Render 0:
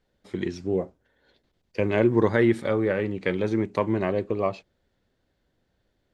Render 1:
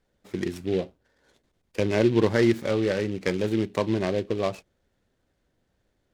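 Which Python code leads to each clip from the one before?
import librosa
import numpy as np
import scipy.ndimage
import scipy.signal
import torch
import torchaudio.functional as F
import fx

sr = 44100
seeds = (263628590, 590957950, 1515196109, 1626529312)

y = fx.dynamic_eq(x, sr, hz=1100.0, q=1.3, threshold_db=-39.0, ratio=4.0, max_db=-4)
y = fx.noise_mod_delay(y, sr, seeds[0], noise_hz=2600.0, depth_ms=0.038)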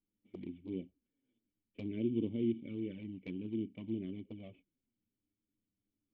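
y = fx.formant_cascade(x, sr, vowel='i')
y = fx.env_flanger(y, sr, rest_ms=9.9, full_db=-29.0)
y = y * 10.0 ** (-4.0 / 20.0)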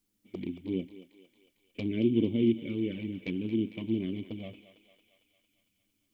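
y = fx.high_shelf(x, sr, hz=2400.0, db=8.0)
y = fx.echo_thinned(y, sr, ms=226, feedback_pct=67, hz=520.0, wet_db=-11.5)
y = y * 10.0 ** (8.0 / 20.0)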